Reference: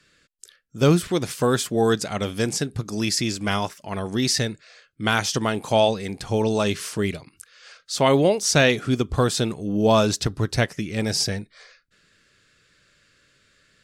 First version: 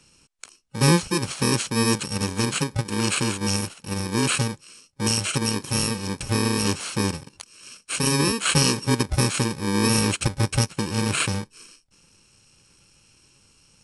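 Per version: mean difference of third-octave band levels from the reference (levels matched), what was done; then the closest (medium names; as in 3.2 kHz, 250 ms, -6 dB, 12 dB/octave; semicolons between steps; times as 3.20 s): 8.5 dB: bit-reversed sample order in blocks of 64 samples; in parallel at +1.5 dB: compression, threshold -32 dBFS, peak gain reduction 18 dB; on the sum: resampled via 22.05 kHz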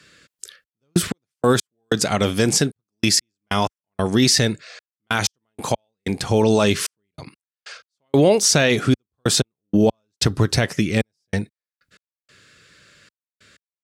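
13.0 dB: trance gate "xxxx..x..x..x" 94 bpm -60 dB; high-pass 67 Hz; loudness maximiser +13.5 dB; trim -5 dB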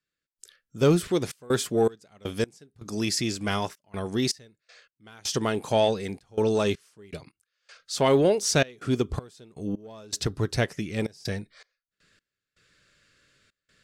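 6.5 dB: dynamic bell 410 Hz, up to +5 dB, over -33 dBFS, Q 2.5; in parallel at -6 dB: saturation -15 dBFS, distortion -12 dB; on the sum: trance gate "..xxxxx.xx..x" 80 bpm -24 dB; trim -7 dB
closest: third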